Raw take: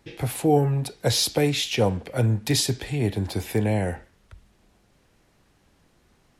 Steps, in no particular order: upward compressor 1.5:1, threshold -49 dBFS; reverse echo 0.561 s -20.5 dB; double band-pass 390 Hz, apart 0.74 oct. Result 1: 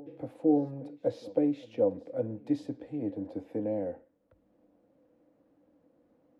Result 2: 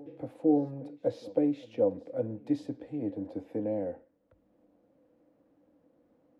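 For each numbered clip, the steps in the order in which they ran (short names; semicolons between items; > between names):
double band-pass > reverse echo > upward compressor; double band-pass > upward compressor > reverse echo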